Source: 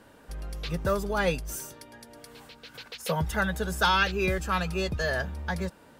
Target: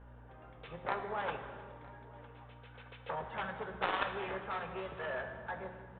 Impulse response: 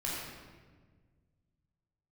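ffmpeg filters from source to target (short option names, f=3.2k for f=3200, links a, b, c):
-filter_complex "[0:a]flanger=delay=4.8:depth=9.1:regen=-57:speed=0.62:shape=sinusoidal,aeval=exprs='0.168*(cos(1*acos(clip(val(0)/0.168,-1,1)))-cos(1*PI/2))+0.075*(cos(3*acos(clip(val(0)/0.168,-1,1)))-cos(3*PI/2))':c=same,bandpass=f=870:t=q:w=0.96:csg=0,aeval=exprs='val(0)+0.000631*(sin(2*PI*60*n/s)+sin(2*PI*2*60*n/s)/2+sin(2*PI*3*60*n/s)/3+sin(2*PI*4*60*n/s)/4+sin(2*PI*5*60*n/s)/5)':c=same,aresample=8000,asoftclip=type=tanh:threshold=-30.5dB,aresample=44100,aecho=1:1:958:0.075,asplit=2[a][b];[1:a]atrim=start_sample=2205,asetrate=33075,aresample=44100[c];[b][c]afir=irnorm=-1:irlink=0,volume=-10.5dB[d];[a][d]amix=inputs=2:normalize=0,volume=8dB"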